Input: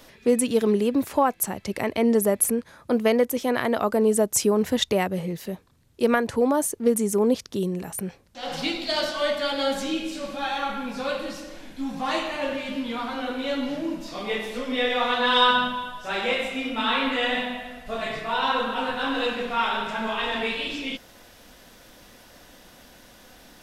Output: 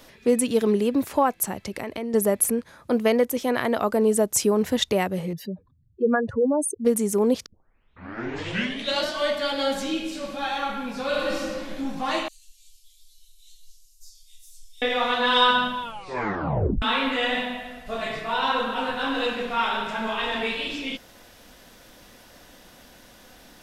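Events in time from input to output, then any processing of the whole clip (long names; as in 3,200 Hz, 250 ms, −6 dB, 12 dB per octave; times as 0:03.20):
0:01.63–0:02.14: downward compressor, threshold −27 dBFS
0:05.33–0:06.85: expanding power law on the bin magnitudes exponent 2.5
0:07.46: tape start 1.62 s
0:11.07–0:11.76: thrown reverb, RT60 1.5 s, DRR −4 dB
0:12.28–0:14.82: inverse Chebyshev band-stop filter 120–1,200 Hz, stop band 80 dB
0:15.81: tape stop 1.01 s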